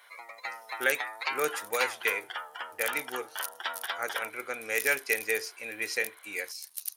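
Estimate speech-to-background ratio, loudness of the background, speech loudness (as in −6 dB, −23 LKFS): 5.0 dB, −37.0 LKFS, −32.0 LKFS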